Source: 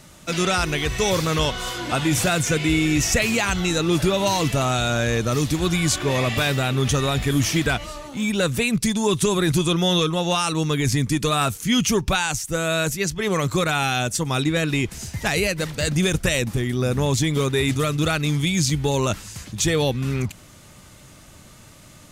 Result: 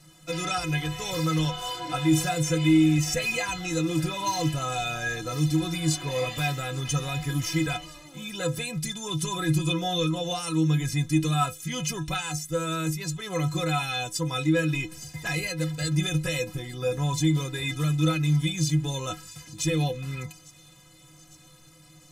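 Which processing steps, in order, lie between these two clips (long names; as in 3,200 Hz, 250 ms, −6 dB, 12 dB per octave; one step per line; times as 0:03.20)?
stiff-string resonator 150 Hz, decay 0.28 s, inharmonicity 0.03
on a send: delay with a high-pass on its return 853 ms, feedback 68%, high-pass 4,200 Hz, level −19.5 dB
on the sum: level +4 dB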